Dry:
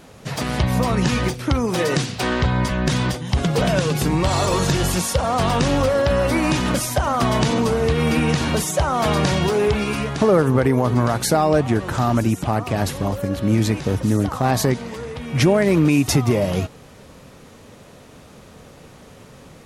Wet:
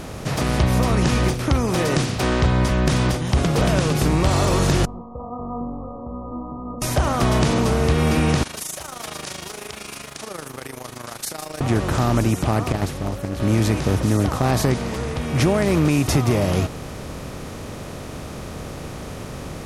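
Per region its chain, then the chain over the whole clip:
4.85–6.82 s: brick-wall FIR low-pass 1.3 kHz + inharmonic resonator 240 Hz, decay 0.48 s, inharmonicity 0.002
8.43–11.61 s: AM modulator 26 Hz, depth 60% + differentiator + bit-crushed delay 156 ms, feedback 35%, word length 7-bit, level -14.5 dB
12.72–13.40 s: gate -20 dBFS, range -10 dB + band-stop 1 kHz, Q 10 + loudspeaker Doppler distortion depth 0.48 ms
whole clip: spectral levelling over time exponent 0.6; bass shelf 94 Hz +8.5 dB; trim -5.5 dB

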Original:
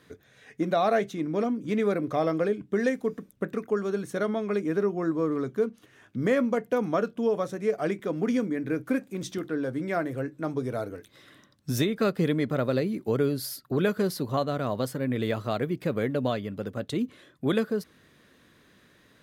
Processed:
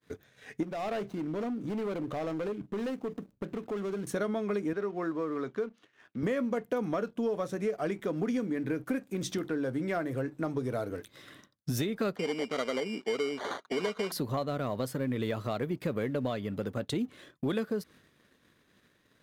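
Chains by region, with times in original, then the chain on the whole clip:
0.63–4.07 s: median filter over 25 samples + compression 2:1, threshold -39 dBFS + hard clipper -32.5 dBFS
4.73–6.23 s: band-pass 130–4300 Hz + bass shelf 480 Hz -9 dB
12.16–14.12 s: comb 4.4 ms, depth 44% + sample-rate reducer 2.6 kHz + band-pass 360–4900 Hz
whole clip: compression 3:1, threshold -34 dBFS; waveshaping leveller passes 1; expander -51 dBFS

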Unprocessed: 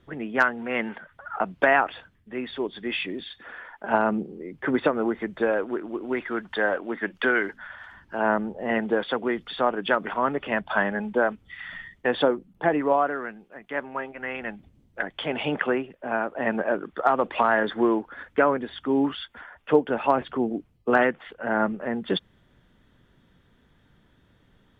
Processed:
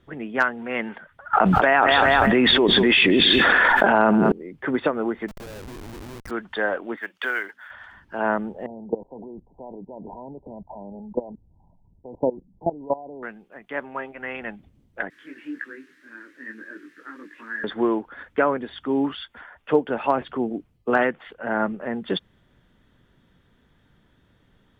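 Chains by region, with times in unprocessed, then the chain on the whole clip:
1.33–4.32 s: feedback delay 195 ms, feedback 32%, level -18.5 dB + level flattener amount 100%
5.28–6.31 s: median filter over 15 samples + compression 12:1, threshold -32 dBFS + Schmitt trigger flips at -37 dBFS
6.96–7.71 s: high-pass 1.2 kHz 6 dB/octave + short-mantissa float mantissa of 4-bit
8.66–13.23 s: brick-wall FIR low-pass 1 kHz + bass shelf 140 Hz +11.5 dB + level held to a coarse grid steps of 19 dB
15.10–17.64 s: word length cut 6-bit, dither triangular + two resonant band-passes 720 Hz, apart 2.5 oct + detune thickener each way 16 cents
whole clip: none

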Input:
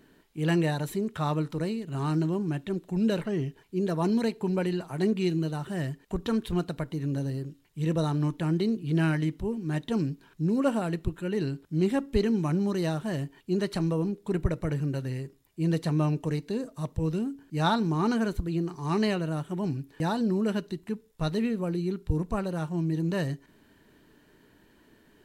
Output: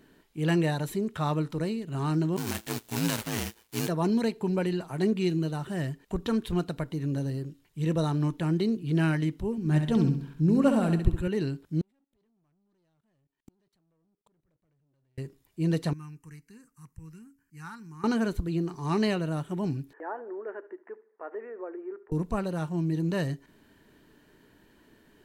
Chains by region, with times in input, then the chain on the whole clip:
2.36–3.87 s: formants flattened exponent 0.3 + ring modulator 56 Hz
9.58–11.28 s: bass shelf 140 Hz +10 dB + flutter echo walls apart 11.3 m, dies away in 0.55 s
11.81–15.18 s: level held to a coarse grid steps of 20 dB + waveshaping leveller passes 3 + inverted gate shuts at -37 dBFS, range -40 dB
15.93–18.04 s: amplifier tone stack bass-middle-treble 5-5-5 + static phaser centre 1.5 kHz, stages 4
19.93–22.12 s: compression 3:1, threshold -29 dBFS + elliptic band-pass 370–1800 Hz + feedback delay 74 ms, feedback 44%, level -19.5 dB
whole clip: none

